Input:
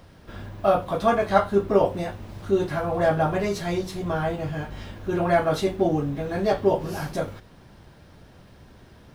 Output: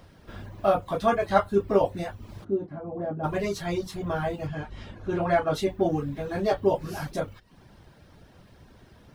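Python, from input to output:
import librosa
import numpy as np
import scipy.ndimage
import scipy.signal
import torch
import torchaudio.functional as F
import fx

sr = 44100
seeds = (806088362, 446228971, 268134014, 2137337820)

y = fx.dereverb_blind(x, sr, rt60_s=0.52)
y = fx.bandpass_q(y, sr, hz=270.0, q=1.4, at=(2.43, 3.23), fade=0.02)
y = fx.air_absorb(y, sr, metres=53.0, at=(4.47, 5.55))
y = y * 10.0 ** (-2.0 / 20.0)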